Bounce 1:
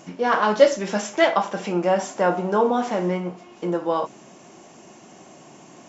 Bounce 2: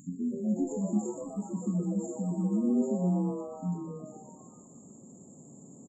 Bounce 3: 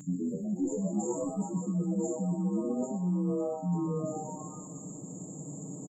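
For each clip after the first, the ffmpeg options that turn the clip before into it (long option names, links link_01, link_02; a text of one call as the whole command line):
ffmpeg -i in.wav -filter_complex "[0:a]acrossover=split=3300[link_01][link_02];[link_02]acompressor=threshold=-42dB:ratio=4:attack=1:release=60[link_03];[link_01][link_03]amix=inputs=2:normalize=0,afftfilt=real='re*(1-between(b*sr/4096,300,6700))':imag='im*(1-between(b*sr/4096,300,6700))':win_size=4096:overlap=0.75,asplit=8[link_04][link_05][link_06][link_07][link_08][link_09][link_10][link_11];[link_05]adelay=123,afreqshift=150,volume=-9dB[link_12];[link_06]adelay=246,afreqshift=300,volume=-13.7dB[link_13];[link_07]adelay=369,afreqshift=450,volume=-18.5dB[link_14];[link_08]adelay=492,afreqshift=600,volume=-23.2dB[link_15];[link_09]adelay=615,afreqshift=750,volume=-27.9dB[link_16];[link_10]adelay=738,afreqshift=900,volume=-32.7dB[link_17];[link_11]adelay=861,afreqshift=1050,volume=-37.4dB[link_18];[link_04][link_12][link_13][link_14][link_15][link_16][link_17][link_18]amix=inputs=8:normalize=0" out.wav
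ffmpeg -i in.wav -af "aecho=1:1:6.5:0.91,areverse,acompressor=threshold=-36dB:ratio=5,areverse,volume=7dB" out.wav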